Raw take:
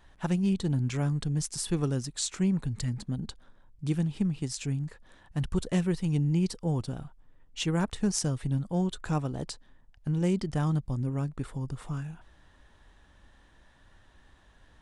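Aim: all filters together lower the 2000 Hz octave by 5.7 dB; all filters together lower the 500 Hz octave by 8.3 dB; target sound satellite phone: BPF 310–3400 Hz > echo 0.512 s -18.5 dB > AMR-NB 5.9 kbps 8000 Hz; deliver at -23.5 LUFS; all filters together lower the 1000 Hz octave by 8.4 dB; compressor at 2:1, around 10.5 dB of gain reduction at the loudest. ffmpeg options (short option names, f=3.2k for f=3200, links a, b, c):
-af "equalizer=f=500:t=o:g=-8.5,equalizer=f=1k:t=o:g=-7,equalizer=f=2k:t=o:g=-4,acompressor=threshold=-44dB:ratio=2,highpass=310,lowpass=3.4k,aecho=1:1:512:0.119,volume=28dB" -ar 8000 -c:a libopencore_amrnb -b:a 5900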